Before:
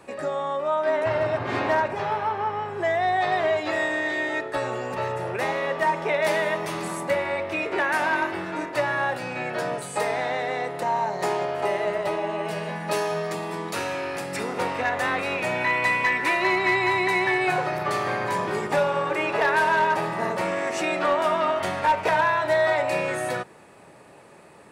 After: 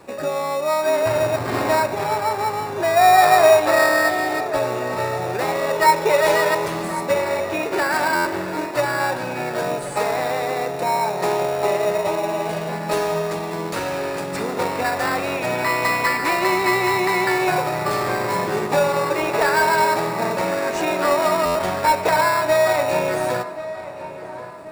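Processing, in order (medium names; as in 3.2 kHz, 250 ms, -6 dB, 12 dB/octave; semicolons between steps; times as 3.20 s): 2.97–4.09 s: time-frequency box 490–1900 Hz +7 dB; 5.73–6.68 s: comb 2.1 ms, depth 93%; in parallel at -3 dB: sample-and-hold 14×; on the sum: filtered feedback delay 1082 ms, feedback 50%, low-pass 2.6 kHz, level -14 dB; on a send at -18 dB: reverberation RT60 1.8 s, pre-delay 110 ms; on the sum: buffer glitch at 8.15/21.45 s, samples 512, times 8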